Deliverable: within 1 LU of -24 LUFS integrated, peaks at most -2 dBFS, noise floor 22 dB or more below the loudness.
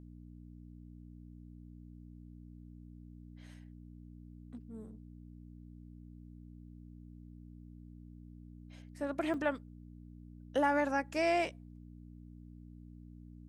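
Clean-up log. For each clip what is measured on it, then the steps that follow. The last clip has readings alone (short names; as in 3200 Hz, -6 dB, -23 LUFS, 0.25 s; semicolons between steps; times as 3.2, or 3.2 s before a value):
dropouts 1; longest dropout 3.0 ms; hum 60 Hz; harmonics up to 300 Hz; hum level -50 dBFS; loudness -34.5 LUFS; peak -19.0 dBFS; loudness target -24.0 LUFS
-> interpolate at 9.34, 3 ms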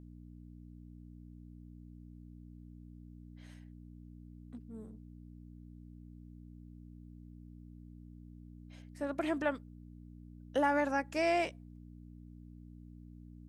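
dropouts 0; hum 60 Hz; harmonics up to 300 Hz; hum level -50 dBFS
-> de-hum 60 Hz, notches 5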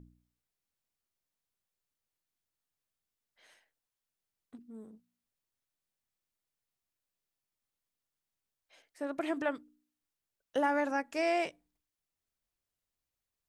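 hum none; loudness -33.5 LUFS; peak -19.0 dBFS; loudness target -24.0 LUFS
-> gain +9.5 dB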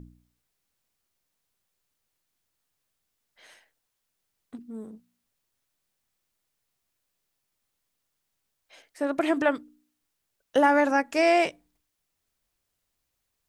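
loudness -24.0 LUFS; peak -9.5 dBFS; noise floor -80 dBFS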